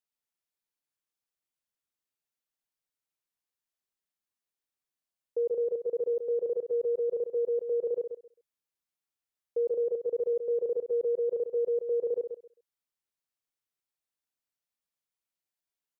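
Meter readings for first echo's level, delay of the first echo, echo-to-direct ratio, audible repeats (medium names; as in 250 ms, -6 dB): -8.0 dB, 132 ms, -8.0 dB, 2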